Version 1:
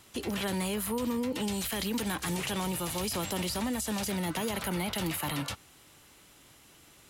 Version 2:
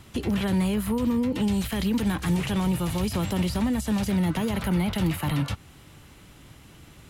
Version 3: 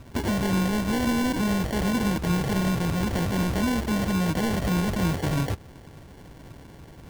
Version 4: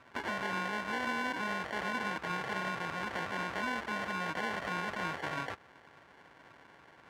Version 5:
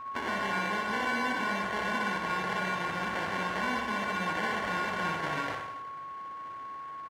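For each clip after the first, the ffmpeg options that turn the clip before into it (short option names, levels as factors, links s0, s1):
-filter_complex "[0:a]asplit=2[s0][s1];[s1]acompressor=threshold=0.01:ratio=6,volume=0.891[s2];[s0][s2]amix=inputs=2:normalize=0,bass=f=250:g=11,treble=f=4000:g=-6"
-filter_complex "[0:a]asplit=2[s0][s1];[s1]aeval=exprs='(mod(15*val(0)+1,2)-1)/15':c=same,volume=0.562[s2];[s0][s2]amix=inputs=2:normalize=0,acrusher=samples=35:mix=1:aa=0.000001"
-af "bandpass=f=1500:t=q:w=1.2:csg=0"
-af "aeval=exprs='val(0)+0.00891*sin(2*PI*1100*n/s)':c=same,aecho=1:1:60|126|198.6|278.5|366.3:0.631|0.398|0.251|0.158|0.1,volume=1.26"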